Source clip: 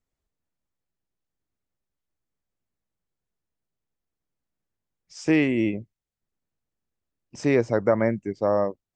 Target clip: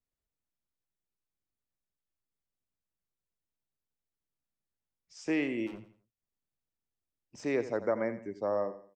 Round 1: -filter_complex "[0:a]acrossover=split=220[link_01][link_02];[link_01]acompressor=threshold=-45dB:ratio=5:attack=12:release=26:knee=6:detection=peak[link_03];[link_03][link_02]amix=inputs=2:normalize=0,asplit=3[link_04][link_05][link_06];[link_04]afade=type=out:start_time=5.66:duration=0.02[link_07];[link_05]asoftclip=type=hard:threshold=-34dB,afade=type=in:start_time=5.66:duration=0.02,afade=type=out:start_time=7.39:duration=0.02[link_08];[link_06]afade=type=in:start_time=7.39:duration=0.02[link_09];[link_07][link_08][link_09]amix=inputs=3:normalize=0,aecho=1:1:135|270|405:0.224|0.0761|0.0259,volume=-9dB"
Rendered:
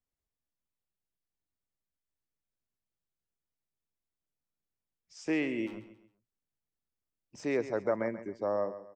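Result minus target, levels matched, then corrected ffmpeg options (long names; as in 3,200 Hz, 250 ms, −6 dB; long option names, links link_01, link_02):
echo 49 ms late
-filter_complex "[0:a]acrossover=split=220[link_01][link_02];[link_01]acompressor=threshold=-45dB:ratio=5:attack=12:release=26:knee=6:detection=peak[link_03];[link_03][link_02]amix=inputs=2:normalize=0,asplit=3[link_04][link_05][link_06];[link_04]afade=type=out:start_time=5.66:duration=0.02[link_07];[link_05]asoftclip=type=hard:threshold=-34dB,afade=type=in:start_time=5.66:duration=0.02,afade=type=out:start_time=7.39:duration=0.02[link_08];[link_06]afade=type=in:start_time=7.39:duration=0.02[link_09];[link_07][link_08][link_09]amix=inputs=3:normalize=0,aecho=1:1:86|172|258:0.224|0.0761|0.0259,volume=-9dB"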